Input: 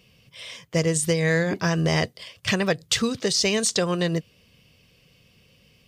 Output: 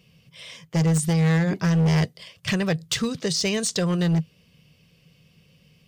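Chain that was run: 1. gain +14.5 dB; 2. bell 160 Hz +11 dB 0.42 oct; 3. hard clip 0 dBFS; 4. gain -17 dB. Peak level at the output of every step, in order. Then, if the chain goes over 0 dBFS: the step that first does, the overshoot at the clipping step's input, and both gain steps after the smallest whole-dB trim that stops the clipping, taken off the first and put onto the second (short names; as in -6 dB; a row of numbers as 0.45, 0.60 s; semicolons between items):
+6.0, +8.5, 0.0, -17.0 dBFS; step 1, 8.5 dB; step 1 +5.5 dB, step 4 -8 dB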